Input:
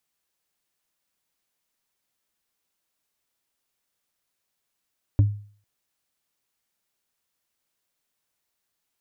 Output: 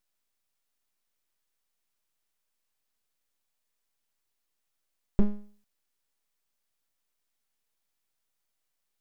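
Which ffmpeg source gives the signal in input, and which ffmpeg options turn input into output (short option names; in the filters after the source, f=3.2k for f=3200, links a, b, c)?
-f lavfi -i "aevalsrc='0.282*pow(10,-3*t/0.46)*sin(2*PI*103*t)+0.0794*pow(10,-3*t/0.136)*sin(2*PI*284*t)+0.0224*pow(10,-3*t/0.061)*sin(2*PI*556.6*t)+0.00631*pow(10,-3*t/0.033)*sin(2*PI*920.1*t)+0.00178*pow(10,-3*t/0.021)*sin(2*PI*1374*t)':d=0.45:s=44100"
-af "aeval=exprs='abs(val(0))':c=same"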